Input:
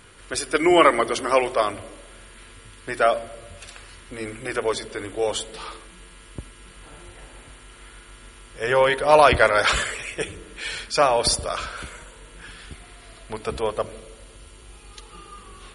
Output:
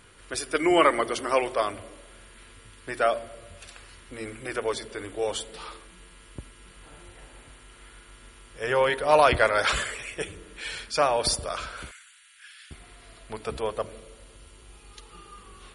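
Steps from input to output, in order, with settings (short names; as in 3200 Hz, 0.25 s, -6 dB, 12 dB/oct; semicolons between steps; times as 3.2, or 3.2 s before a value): 11.91–12.71 inverse Chebyshev high-pass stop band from 770 Hz, stop band 40 dB; gain -4.5 dB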